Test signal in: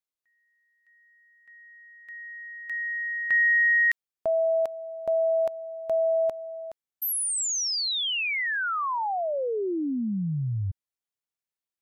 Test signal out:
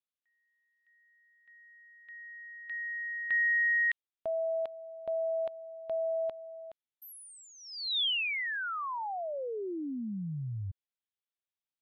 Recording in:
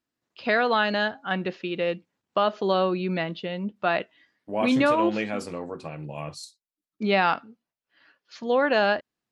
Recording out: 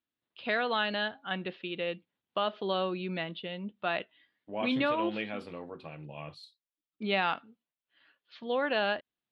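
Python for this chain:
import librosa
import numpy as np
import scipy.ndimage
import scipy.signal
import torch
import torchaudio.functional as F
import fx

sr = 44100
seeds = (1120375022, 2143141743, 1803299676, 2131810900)

y = fx.high_shelf_res(x, sr, hz=4800.0, db=-11.5, q=3.0)
y = y * librosa.db_to_amplitude(-8.5)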